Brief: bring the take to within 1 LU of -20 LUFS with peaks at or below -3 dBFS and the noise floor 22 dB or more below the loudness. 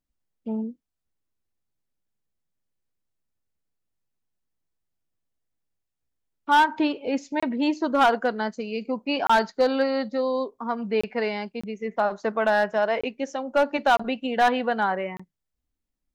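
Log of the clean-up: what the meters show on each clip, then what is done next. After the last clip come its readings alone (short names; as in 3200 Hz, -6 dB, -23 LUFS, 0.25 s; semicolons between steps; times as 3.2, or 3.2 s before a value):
clipped 0.5%; flat tops at -13.0 dBFS; dropouts 7; longest dropout 25 ms; loudness -24.5 LUFS; peak -13.0 dBFS; loudness target -20.0 LUFS
-> clip repair -13 dBFS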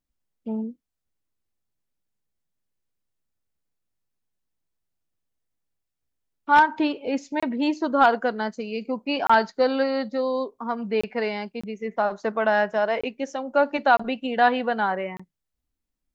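clipped 0.0%; dropouts 7; longest dropout 25 ms
-> interpolate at 7.4/9.27/11.01/11.61/13.01/13.97/15.17, 25 ms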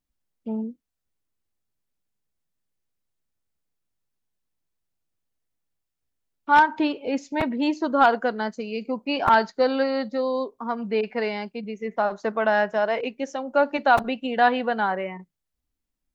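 dropouts 0; loudness -24.0 LUFS; peak -4.0 dBFS; loudness target -20.0 LUFS
-> gain +4 dB; limiter -3 dBFS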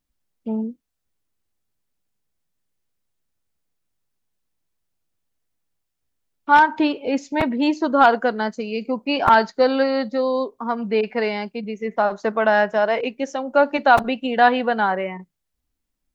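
loudness -20.0 LUFS; peak -3.0 dBFS; noise floor -78 dBFS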